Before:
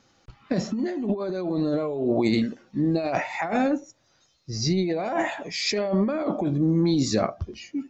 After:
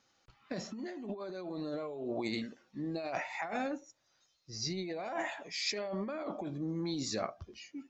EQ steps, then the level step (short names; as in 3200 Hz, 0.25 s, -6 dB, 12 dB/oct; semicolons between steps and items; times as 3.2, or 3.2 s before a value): low shelf 480 Hz -9.5 dB; -8.0 dB